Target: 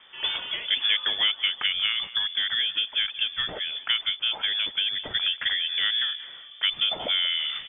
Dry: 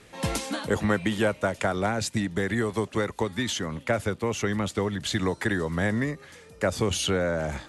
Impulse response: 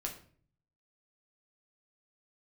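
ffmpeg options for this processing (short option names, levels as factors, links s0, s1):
-filter_complex "[0:a]asplit=2[s0][s1];[s1]adelay=184,lowpass=f=2000:p=1,volume=0.168,asplit=2[s2][s3];[s3]adelay=184,lowpass=f=2000:p=1,volume=0.53,asplit=2[s4][s5];[s5]adelay=184,lowpass=f=2000:p=1,volume=0.53,asplit=2[s6][s7];[s7]adelay=184,lowpass=f=2000:p=1,volume=0.53,asplit=2[s8][s9];[s9]adelay=184,lowpass=f=2000:p=1,volume=0.53[s10];[s0][s2][s4][s6][s8][s10]amix=inputs=6:normalize=0,lowpass=f=3100:t=q:w=0.5098,lowpass=f=3100:t=q:w=0.6013,lowpass=f=3100:t=q:w=0.9,lowpass=f=3100:t=q:w=2.563,afreqshift=-3600"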